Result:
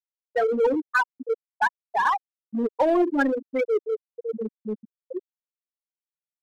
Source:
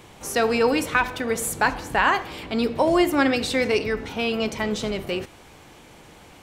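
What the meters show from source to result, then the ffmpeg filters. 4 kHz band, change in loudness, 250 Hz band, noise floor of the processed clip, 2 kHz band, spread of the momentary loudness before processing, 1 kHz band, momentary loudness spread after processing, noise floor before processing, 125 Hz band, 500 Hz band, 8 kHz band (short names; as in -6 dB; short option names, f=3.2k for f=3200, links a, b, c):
-16.5 dB, -2.5 dB, -3.5 dB, under -85 dBFS, -4.0 dB, 8 LU, -2.0 dB, 14 LU, -48 dBFS, under -10 dB, -1.5 dB, under -20 dB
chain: -filter_complex "[0:a]afftfilt=real='re*gte(hypot(re,im),0.501)':imag='im*gte(hypot(re,im),0.501)':win_size=1024:overlap=0.75,highpass=f=360:p=1,asplit=2[a][b];[b]volume=28.5dB,asoftclip=hard,volume=-28.5dB,volume=-3dB[c];[a][c]amix=inputs=2:normalize=0"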